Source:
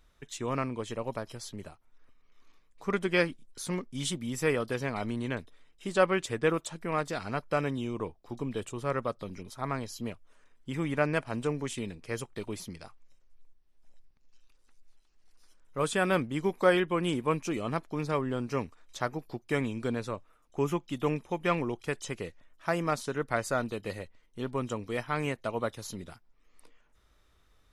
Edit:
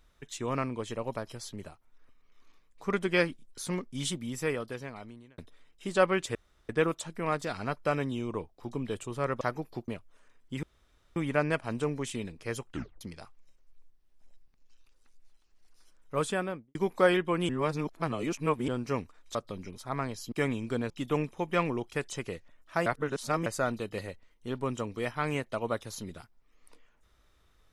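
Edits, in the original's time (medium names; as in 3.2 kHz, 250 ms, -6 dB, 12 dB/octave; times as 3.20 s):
4.04–5.38 s: fade out
6.35 s: insert room tone 0.34 s
9.07–10.04 s: swap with 18.98–19.45 s
10.79 s: insert room tone 0.53 s
12.31 s: tape stop 0.33 s
15.80–16.38 s: studio fade out
17.12–18.31 s: reverse
20.03–20.82 s: delete
22.78–23.38 s: reverse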